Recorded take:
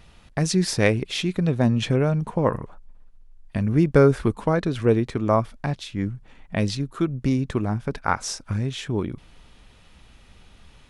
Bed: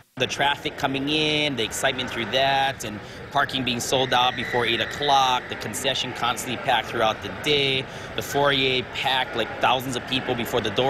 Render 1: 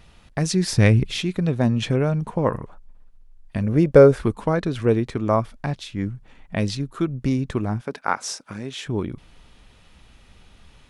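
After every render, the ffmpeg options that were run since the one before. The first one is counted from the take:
-filter_complex "[0:a]asplit=3[a][b][c];[a]afade=t=out:st=0.71:d=0.02[d];[b]asubboost=boost=10:cutoff=220,afade=t=in:st=0.71:d=0.02,afade=t=out:st=1.18:d=0.02[e];[c]afade=t=in:st=1.18:d=0.02[f];[d][e][f]amix=inputs=3:normalize=0,asettb=1/sr,asplit=3[g][h][i];[g]atrim=end=3.634[j];[h]atrim=start=3.63:end=4.14,asetpts=PTS-STARTPTS,afade=t=in:d=0.004:c=qsin,afade=t=out:st=0.506:d=0.004:c=qsin,equalizer=f=540:w=2.5:g=10[k];[i]atrim=start=4.136[l];[j][k]acrossfade=d=0.004:c1=hsin:c2=qsin[m];[m][l]acrossfade=d=0.004:c1=qsin:c2=hsin,asettb=1/sr,asplit=3[n][o][p];[n]atrim=end=7.814[q];[o]atrim=start=7.81:end=8.86,asetpts=PTS-STARTPTS,afade=t=in:d=0.004:c=qsin,afade=t=out:st=1.046:d=0.004:c=qsin,highpass=240[r];[p]atrim=start=8.856[s];[q][r]acrossfade=d=0.004:c1=hsin:c2=qsin[t];[t][s]acrossfade=d=0.004:c1=qsin:c2=hsin"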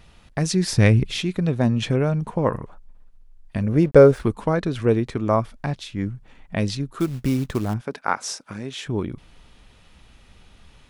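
-filter_complex "[0:a]asettb=1/sr,asplit=3[a][b][c];[a]atrim=end=3.824[d];[b]atrim=start=3.82:end=4.25,asetpts=PTS-STARTPTS,afade=t=in:d=0.004:c=qsin,afade=t=out:st=0.426:d=0.004:c=qsin,aeval=exprs='sgn(val(0))*max(abs(val(0))-0.00501,0)':c=same[e];[c]atrim=start=4.246[f];[d][e]acrossfade=d=0.004:c1=hsin:c2=qsin[g];[g][f]acrossfade=d=0.004:c1=qsin:c2=hsin,asettb=1/sr,asplit=3[h][i][j];[h]atrim=end=6.994[k];[i]atrim=start=6.99:end=7.74,asetpts=PTS-STARTPTS,afade=t=in:d=0.004:c=qsin,afade=t=out:st=0.746:d=0.004:c=qsin,acrusher=bits=5:mode=log:mix=0:aa=0.000001[l];[j]atrim=start=7.736[m];[k][l]acrossfade=d=0.004:c1=hsin:c2=qsin[n];[n][m]acrossfade=d=0.004:c1=qsin:c2=hsin"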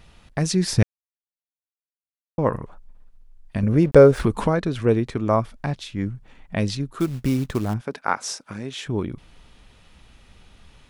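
-filter_complex "[0:a]asettb=1/sr,asplit=3[a][b][c];[a]atrim=end=3.634[d];[b]atrim=start=3.63:end=4.5,asetpts=PTS-STARTPTS,afade=t=in:d=0.004:c=qsin,afade=t=out:st=0.866:d=0.004:c=qsin,acompressor=mode=upward:threshold=-13dB:ratio=2.5:attack=3.2:release=140:knee=2.83:detection=peak[e];[c]atrim=start=4.496[f];[d][e]acrossfade=d=0.004:c1=hsin:c2=qsin[g];[g][f]acrossfade=d=0.004:c1=qsin:c2=hsin,asplit=3[h][i][j];[h]atrim=end=0.83,asetpts=PTS-STARTPTS,afade=t=out:st=0.826:d=0.004:c=hsin[k];[i]atrim=start=0.83:end=2.38,asetpts=PTS-STARTPTS,volume=0[l];[j]atrim=start=2.38,asetpts=PTS-STARTPTS,afade=t=in:d=0.004:c=hsin[m];[k][l][m]concat=n=3:v=0:a=1"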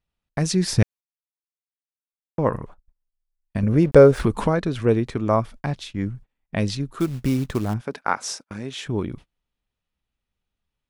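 -af "agate=range=-32dB:threshold=-38dB:ratio=16:detection=peak"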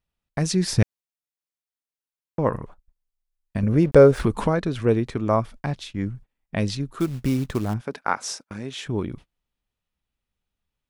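-af "volume=-1dB,alimiter=limit=-3dB:level=0:latency=1"

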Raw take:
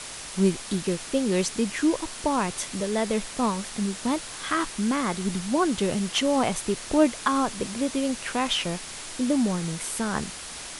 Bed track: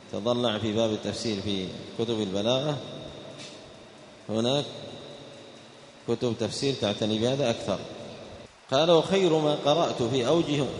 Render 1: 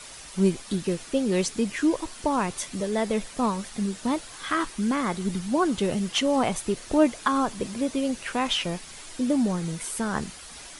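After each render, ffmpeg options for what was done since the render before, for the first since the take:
-af "afftdn=nr=8:nf=-39"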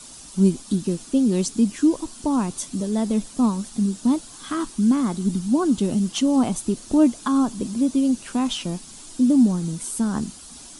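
-af "equalizer=f=250:t=o:w=1:g=10,equalizer=f=500:t=o:w=1:g=-6,equalizer=f=2k:t=o:w=1:g=-11,equalizer=f=8k:t=o:w=1:g=4"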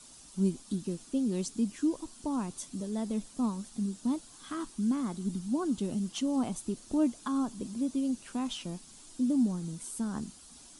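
-af "volume=-11dB"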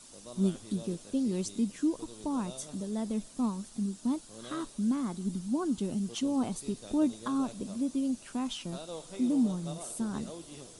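-filter_complex "[1:a]volume=-22dB[a];[0:a][a]amix=inputs=2:normalize=0"

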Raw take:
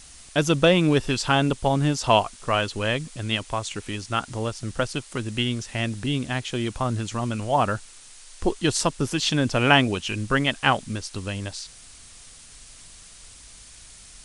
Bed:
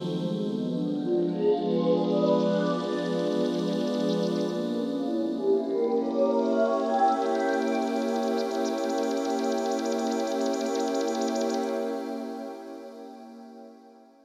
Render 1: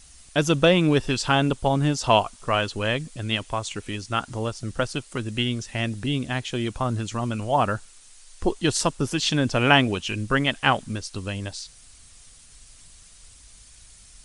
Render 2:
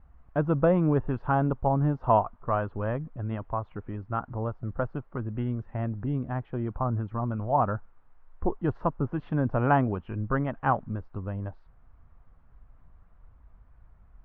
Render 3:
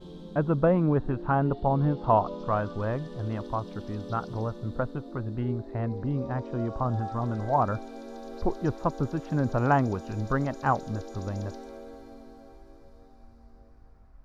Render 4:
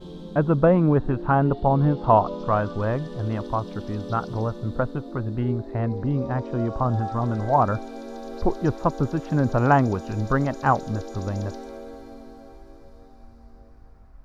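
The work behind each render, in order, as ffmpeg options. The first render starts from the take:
-af "afftdn=nr=6:nf=-47"
-af "lowpass=f=1.2k:w=0.5412,lowpass=f=1.2k:w=1.3066,equalizer=f=360:w=0.68:g=-5.5"
-filter_complex "[1:a]volume=-14.5dB[a];[0:a][a]amix=inputs=2:normalize=0"
-af "volume=5dB"

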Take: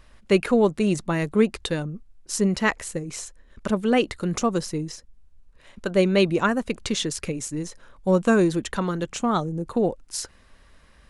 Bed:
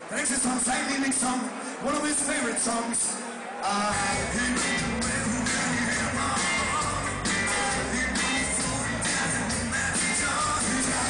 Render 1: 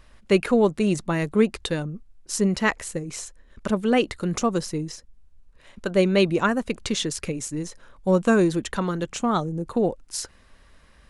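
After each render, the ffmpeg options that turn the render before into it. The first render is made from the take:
-af anull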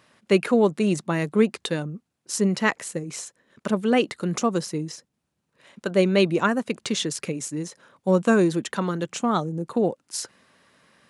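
-af "highpass=f=130:w=0.5412,highpass=f=130:w=1.3066"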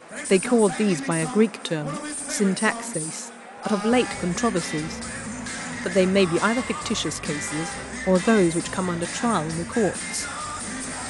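-filter_complex "[1:a]volume=-5.5dB[a];[0:a][a]amix=inputs=2:normalize=0"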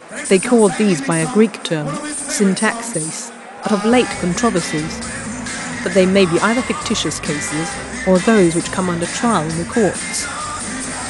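-af "volume=7dB,alimiter=limit=-1dB:level=0:latency=1"

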